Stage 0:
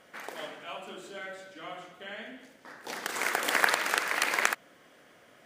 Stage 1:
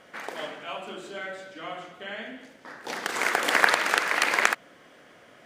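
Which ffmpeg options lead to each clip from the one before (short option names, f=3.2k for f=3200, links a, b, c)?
-af "highshelf=f=9.5k:g=-10,volume=5dB"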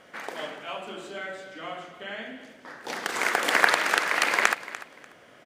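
-af "aecho=1:1:294|588:0.158|0.0349"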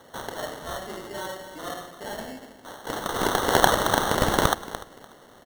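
-af "acrusher=samples=18:mix=1:aa=0.000001,volume=2dB"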